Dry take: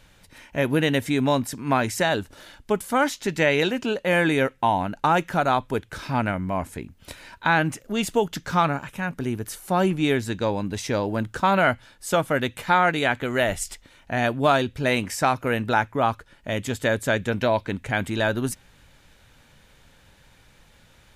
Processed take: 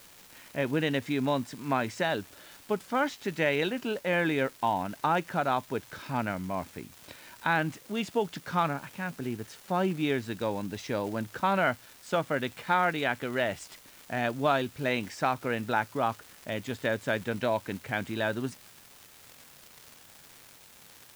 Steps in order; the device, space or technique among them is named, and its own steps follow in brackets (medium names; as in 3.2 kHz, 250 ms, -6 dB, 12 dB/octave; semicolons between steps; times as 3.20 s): 78 rpm shellac record (band-pass 110–4900 Hz; crackle 320 per s -32 dBFS; white noise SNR 25 dB); trim -6.5 dB